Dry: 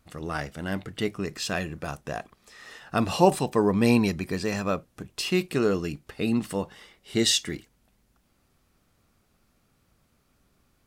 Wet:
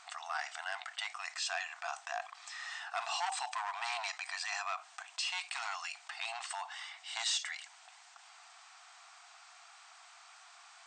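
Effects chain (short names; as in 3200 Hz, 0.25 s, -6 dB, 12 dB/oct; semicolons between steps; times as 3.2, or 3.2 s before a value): hard clip -20.5 dBFS, distortion -9 dB; brick-wall FIR band-pass 660–8800 Hz; fast leveller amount 50%; gain -8.5 dB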